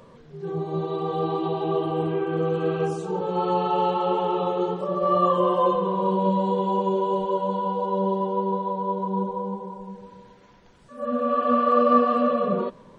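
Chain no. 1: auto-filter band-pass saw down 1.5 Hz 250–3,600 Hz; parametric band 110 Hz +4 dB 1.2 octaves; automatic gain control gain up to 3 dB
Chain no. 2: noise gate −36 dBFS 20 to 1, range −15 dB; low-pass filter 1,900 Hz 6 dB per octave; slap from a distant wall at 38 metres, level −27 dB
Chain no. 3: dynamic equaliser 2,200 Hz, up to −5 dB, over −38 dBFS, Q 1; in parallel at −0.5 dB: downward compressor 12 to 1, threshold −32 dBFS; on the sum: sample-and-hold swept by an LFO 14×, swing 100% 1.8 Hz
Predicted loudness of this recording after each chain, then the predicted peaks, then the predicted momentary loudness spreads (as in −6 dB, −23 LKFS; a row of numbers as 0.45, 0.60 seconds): −28.0, −24.5, −22.0 LKFS; −10.0, −6.5, −6.0 dBFS; 12, 8, 8 LU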